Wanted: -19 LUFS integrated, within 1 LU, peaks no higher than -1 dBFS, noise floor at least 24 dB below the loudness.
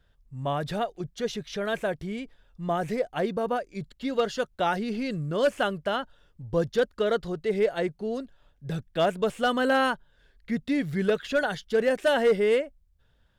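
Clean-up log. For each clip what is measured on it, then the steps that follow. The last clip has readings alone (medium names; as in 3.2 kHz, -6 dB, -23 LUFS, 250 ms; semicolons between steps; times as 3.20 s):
clipped samples 0.3%; clipping level -15.5 dBFS; loudness -27.5 LUFS; peak level -15.5 dBFS; loudness target -19.0 LUFS
-> clip repair -15.5 dBFS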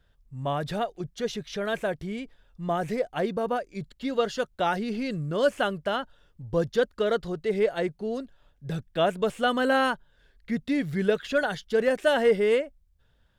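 clipped samples 0.0%; loudness -27.5 LUFS; peak level -10.5 dBFS; loudness target -19.0 LUFS
-> trim +8.5 dB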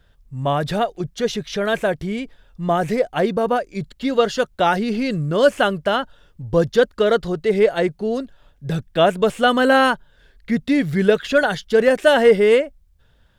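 loudness -19.0 LUFS; peak level -2.0 dBFS; noise floor -56 dBFS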